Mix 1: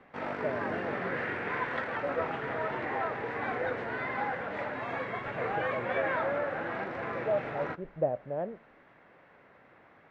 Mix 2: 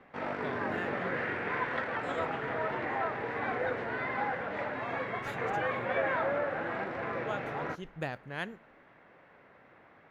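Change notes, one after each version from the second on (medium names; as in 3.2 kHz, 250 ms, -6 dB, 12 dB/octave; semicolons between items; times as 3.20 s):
speech: remove resonant low-pass 600 Hz, resonance Q 5.1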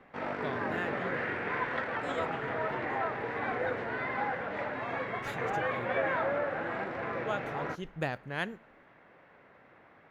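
speech +3.0 dB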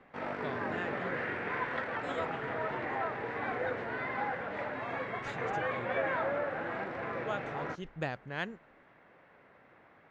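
speech: add low-pass 7.8 kHz 24 dB/octave; reverb: off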